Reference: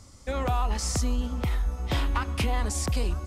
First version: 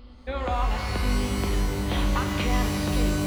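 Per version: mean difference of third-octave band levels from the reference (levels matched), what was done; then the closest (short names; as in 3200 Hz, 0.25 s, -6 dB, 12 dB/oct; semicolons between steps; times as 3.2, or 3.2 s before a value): 7.5 dB: steep low-pass 4500 Hz 72 dB/oct; bell 130 Hz -14.5 dB 0.72 oct; on a send: reverse echo 1.137 s -20 dB; on the sum: shimmer reverb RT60 3.2 s, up +12 st, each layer -2 dB, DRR 3.5 dB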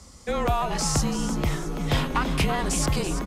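4.0 dB: frequency-shifting echo 0.334 s, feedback 46%, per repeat +130 Hz, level -10 dB; frequency shift -29 Hz; HPF 41 Hz 12 dB/oct; gain +4.5 dB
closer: second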